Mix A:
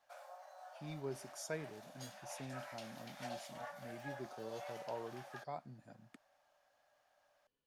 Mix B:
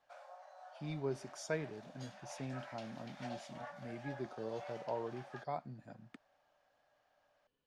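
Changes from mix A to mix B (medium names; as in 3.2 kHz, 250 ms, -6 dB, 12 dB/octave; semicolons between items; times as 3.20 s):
speech +5.0 dB; master: add distance through air 81 m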